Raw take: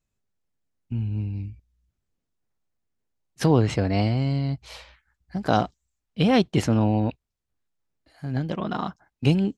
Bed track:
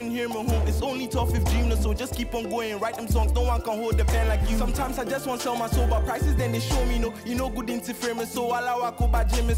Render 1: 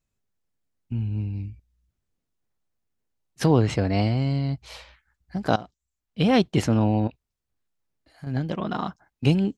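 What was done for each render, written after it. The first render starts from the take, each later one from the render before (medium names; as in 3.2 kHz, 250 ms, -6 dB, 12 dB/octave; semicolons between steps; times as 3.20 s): 5.56–6.30 s: fade in, from -19 dB; 7.07–8.27 s: compression 10:1, threshold -32 dBFS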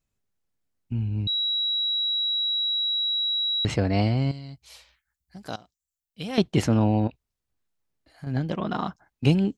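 1.27–3.65 s: bleep 3.88 kHz -22.5 dBFS; 4.31–6.38 s: pre-emphasis filter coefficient 0.8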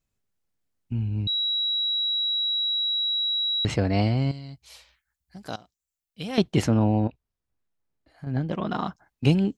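6.70–8.53 s: treble shelf 2.8 kHz -9 dB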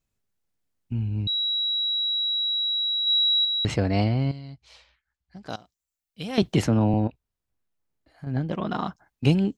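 3.04–3.45 s: flutter echo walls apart 4.6 m, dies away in 0.31 s; 4.04–5.50 s: distance through air 110 m; 6.42–6.94 s: three bands compressed up and down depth 40%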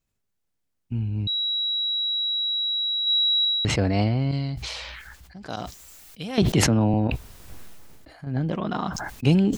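decay stretcher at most 25 dB/s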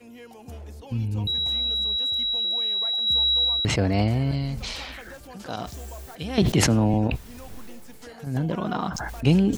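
add bed track -16.5 dB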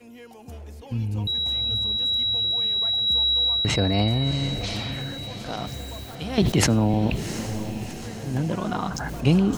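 echo that smears into a reverb 734 ms, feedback 53%, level -10 dB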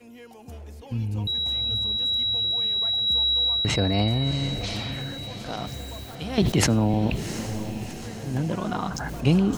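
trim -1 dB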